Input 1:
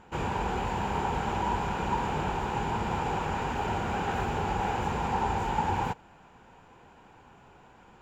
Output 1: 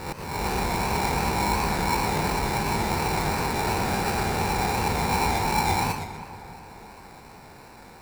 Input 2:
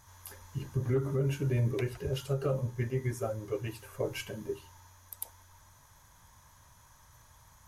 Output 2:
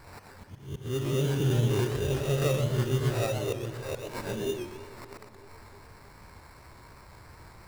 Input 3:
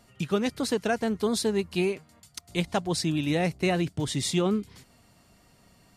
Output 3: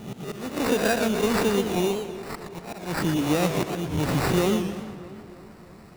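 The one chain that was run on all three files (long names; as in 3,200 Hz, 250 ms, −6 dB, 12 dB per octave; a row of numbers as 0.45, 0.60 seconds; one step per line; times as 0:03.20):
peak hold with a rise ahead of every peak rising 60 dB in 0.56 s
in parallel at −1 dB: downward compressor, threshold −37 dBFS
on the sum: sample-rate reduction 3,200 Hz, jitter 0%
volume swells 346 ms
on a send: feedback echo with a low-pass in the loop 314 ms, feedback 61%, low-pass 3,000 Hz, level −15.5 dB
on the sum: feedback echo with a swinging delay time 122 ms, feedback 36%, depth 193 cents, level −7 dB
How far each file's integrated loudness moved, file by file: +5.0, +5.0, +2.5 LU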